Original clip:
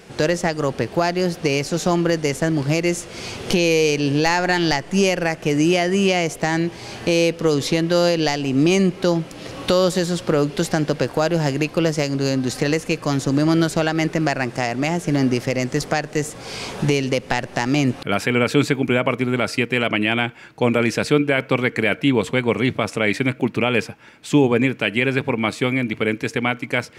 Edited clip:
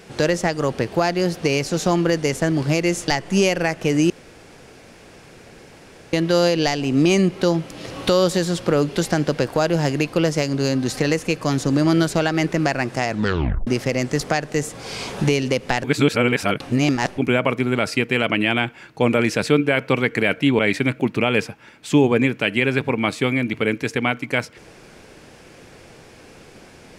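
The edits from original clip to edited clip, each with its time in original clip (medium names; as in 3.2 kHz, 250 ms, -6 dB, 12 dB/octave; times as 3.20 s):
3.08–4.69 s: delete
5.71–7.74 s: room tone
14.69 s: tape stop 0.59 s
17.45–18.79 s: reverse
22.20–22.99 s: delete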